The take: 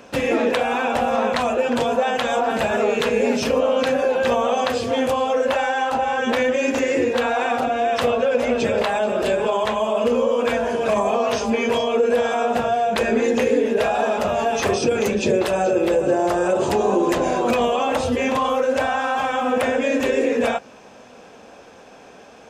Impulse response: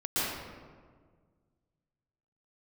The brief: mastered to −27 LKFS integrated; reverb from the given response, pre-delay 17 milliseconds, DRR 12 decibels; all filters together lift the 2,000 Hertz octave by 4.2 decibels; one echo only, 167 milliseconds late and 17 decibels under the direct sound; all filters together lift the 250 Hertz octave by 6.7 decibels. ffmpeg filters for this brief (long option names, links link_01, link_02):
-filter_complex "[0:a]equalizer=frequency=250:width_type=o:gain=7.5,equalizer=frequency=2000:width_type=o:gain=5.5,aecho=1:1:167:0.141,asplit=2[link_01][link_02];[1:a]atrim=start_sample=2205,adelay=17[link_03];[link_02][link_03]afir=irnorm=-1:irlink=0,volume=-21.5dB[link_04];[link_01][link_04]amix=inputs=2:normalize=0,volume=-10dB"